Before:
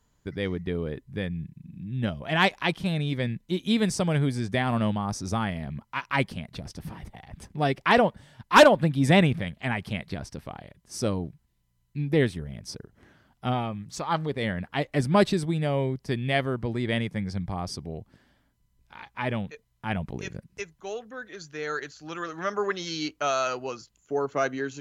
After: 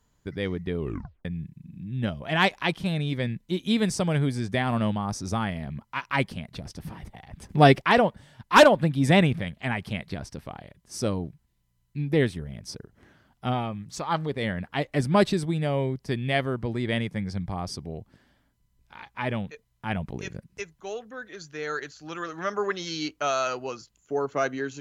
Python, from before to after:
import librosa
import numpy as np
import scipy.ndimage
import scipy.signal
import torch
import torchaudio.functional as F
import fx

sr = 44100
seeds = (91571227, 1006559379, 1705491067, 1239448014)

y = fx.edit(x, sr, fx.tape_stop(start_s=0.79, length_s=0.46),
    fx.clip_gain(start_s=7.49, length_s=0.32, db=9.5), tone=tone)